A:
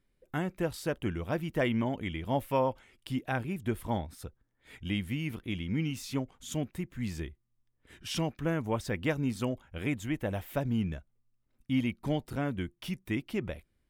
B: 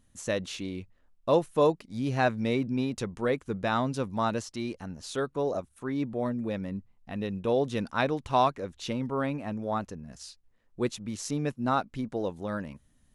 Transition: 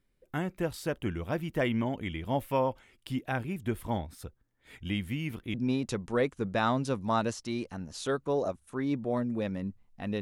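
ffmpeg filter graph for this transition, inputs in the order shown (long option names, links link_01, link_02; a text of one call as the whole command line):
ffmpeg -i cue0.wav -i cue1.wav -filter_complex "[0:a]apad=whole_dur=10.21,atrim=end=10.21,atrim=end=5.542[link_01];[1:a]atrim=start=2.628:end=7.3[link_02];[link_01][link_02]acrossfade=duration=0.004:curve1=hsin:curve2=hsin" out.wav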